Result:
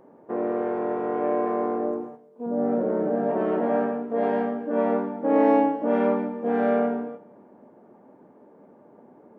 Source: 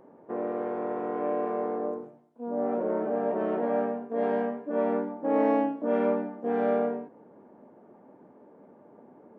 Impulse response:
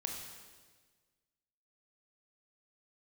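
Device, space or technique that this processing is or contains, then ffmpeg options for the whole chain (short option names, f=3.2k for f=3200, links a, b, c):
keyed gated reverb: -filter_complex "[0:a]asettb=1/sr,asplit=3[a][b][c];[a]atrim=end=2.464[d];[b]atrim=start=2.46:end=3.29,asetpts=PTS-STARTPTS,afade=t=in:d=0.004:c=qsin,afade=t=out:st=0.826:d=0.004:c=qsin,equalizer=f=160:t=o:w=0.67:g=7,equalizer=f=1k:t=o:w=0.67:g=-6,equalizer=f=2.5k:t=o:w=0.67:g=-6[e];[c]atrim=start=3.286[f];[d][e]acrossfade=d=0.004:c1=hsin:c2=qsin[g];[g][f]acrossfade=d=0.004:c1=qsin:c2=hsin,asplit=3[h][i][j];[1:a]atrim=start_sample=2205[k];[i][k]afir=irnorm=-1:irlink=0[l];[j]apad=whole_len=414008[m];[l][m]sidechaingate=range=-10dB:threshold=-49dB:ratio=16:detection=peak,volume=-2.5dB[n];[h][n]amix=inputs=2:normalize=0"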